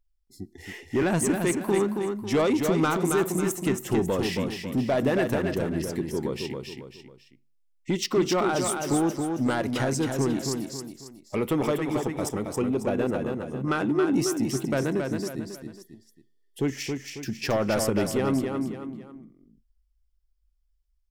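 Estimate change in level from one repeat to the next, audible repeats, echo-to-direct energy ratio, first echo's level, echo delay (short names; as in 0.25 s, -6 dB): -8.0 dB, 3, -4.5 dB, -5.0 dB, 0.273 s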